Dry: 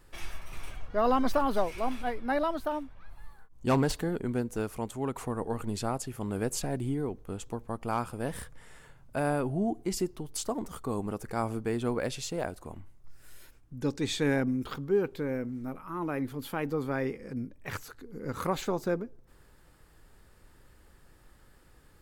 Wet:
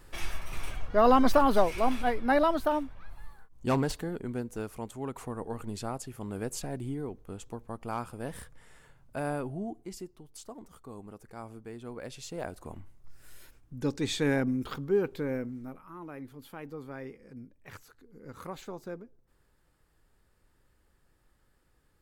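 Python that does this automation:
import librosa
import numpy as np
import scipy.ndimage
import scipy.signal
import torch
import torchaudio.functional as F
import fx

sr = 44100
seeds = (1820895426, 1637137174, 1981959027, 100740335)

y = fx.gain(x, sr, db=fx.line((2.82, 4.5), (4.07, -4.0), (9.36, -4.0), (10.1, -12.5), (11.85, -12.5), (12.67, 0.0), (15.36, 0.0), (16.03, -10.5)))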